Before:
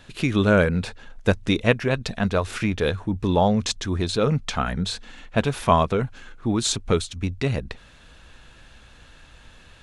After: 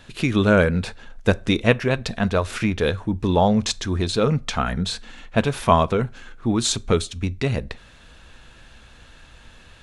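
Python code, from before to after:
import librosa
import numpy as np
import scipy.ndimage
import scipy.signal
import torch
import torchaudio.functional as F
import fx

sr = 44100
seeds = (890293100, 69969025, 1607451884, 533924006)

y = fx.rev_fdn(x, sr, rt60_s=0.38, lf_ratio=0.8, hf_ratio=0.75, size_ms=26.0, drr_db=17.5)
y = y * librosa.db_to_amplitude(1.5)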